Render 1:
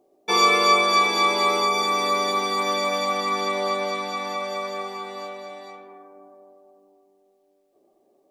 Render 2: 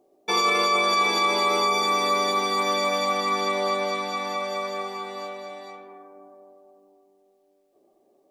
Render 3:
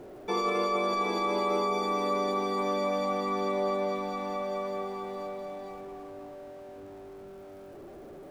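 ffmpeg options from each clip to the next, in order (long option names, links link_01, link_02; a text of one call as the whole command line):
ffmpeg -i in.wav -af "alimiter=limit=-13.5dB:level=0:latency=1:release=14" out.wav
ffmpeg -i in.wav -af "aeval=exprs='val(0)+0.5*0.0126*sgn(val(0))':channel_layout=same,tiltshelf=frequency=1100:gain=8.5,volume=-8dB" out.wav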